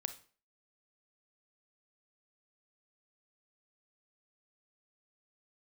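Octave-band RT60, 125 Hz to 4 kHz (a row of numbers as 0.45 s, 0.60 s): 0.40 s, 0.45 s, 0.45 s, 0.40 s, 0.40 s, 0.35 s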